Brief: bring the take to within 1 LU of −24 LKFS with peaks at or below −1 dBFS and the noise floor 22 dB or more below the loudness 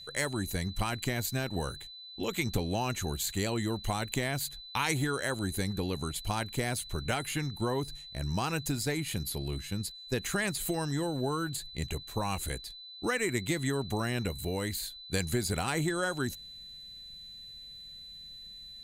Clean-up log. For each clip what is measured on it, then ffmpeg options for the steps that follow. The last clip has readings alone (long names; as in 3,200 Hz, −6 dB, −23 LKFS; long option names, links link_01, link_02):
interfering tone 4,000 Hz; level of the tone −45 dBFS; integrated loudness −33.0 LKFS; sample peak −14.0 dBFS; target loudness −24.0 LKFS
→ -af "bandreject=frequency=4000:width=30"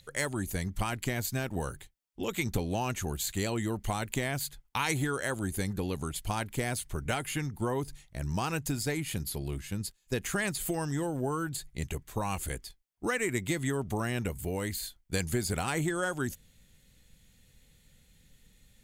interfering tone none found; integrated loudness −33.0 LKFS; sample peak −14.0 dBFS; target loudness −24.0 LKFS
→ -af "volume=9dB"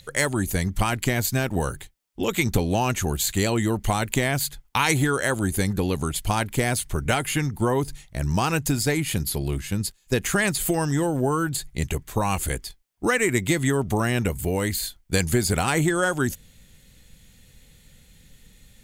integrated loudness −24.0 LKFS; sample peak −5.0 dBFS; background noise floor −57 dBFS